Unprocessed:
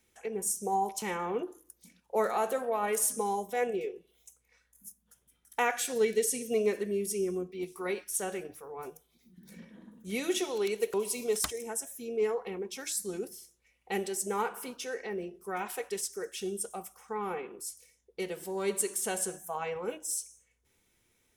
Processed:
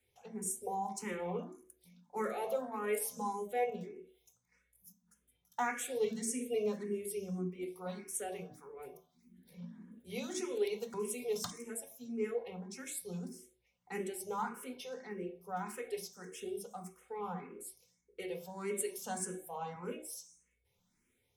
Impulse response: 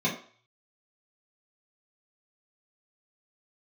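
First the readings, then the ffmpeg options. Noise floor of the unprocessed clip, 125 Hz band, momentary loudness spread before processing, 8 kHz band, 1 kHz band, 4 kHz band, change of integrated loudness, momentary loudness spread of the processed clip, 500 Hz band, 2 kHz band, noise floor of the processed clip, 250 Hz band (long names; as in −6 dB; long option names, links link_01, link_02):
−73 dBFS, 0.0 dB, 14 LU, −8.5 dB, −6.0 dB, −8.5 dB, −6.5 dB, 14 LU, −6.5 dB, −7.5 dB, −79 dBFS, −4.0 dB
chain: -filter_complex "[0:a]asplit=2[link_01][link_02];[1:a]atrim=start_sample=2205,lowshelf=frequency=190:gain=6.5[link_03];[link_02][link_03]afir=irnorm=-1:irlink=0,volume=-14dB[link_04];[link_01][link_04]amix=inputs=2:normalize=0,asplit=2[link_05][link_06];[link_06]afreqshift=1.7[link_07];[link_05][link_07]amix=inputs=2:normalize=1,volume=-4.5dB"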